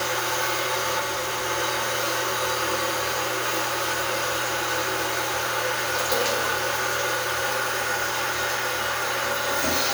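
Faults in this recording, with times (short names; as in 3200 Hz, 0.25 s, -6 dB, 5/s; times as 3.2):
0.99–1.47 clipped -23.5 dBFS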